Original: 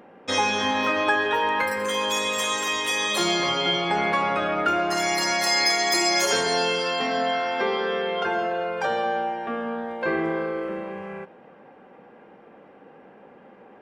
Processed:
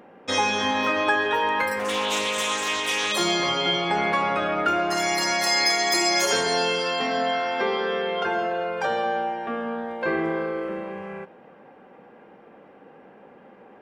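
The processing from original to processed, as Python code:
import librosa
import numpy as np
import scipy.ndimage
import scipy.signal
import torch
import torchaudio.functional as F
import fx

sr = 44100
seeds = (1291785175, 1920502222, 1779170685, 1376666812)

y = fx.doppler_dist(x, sr, depth_ms=0.21, at=(1.79, 3.12))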